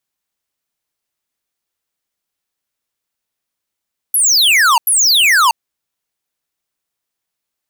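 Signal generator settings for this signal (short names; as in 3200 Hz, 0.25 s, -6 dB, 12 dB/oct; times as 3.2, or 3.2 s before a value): burst of laser zaps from 12000 Hz, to 880 Hz, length 0.64 s square, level -10 dB, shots 2, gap 0.09 s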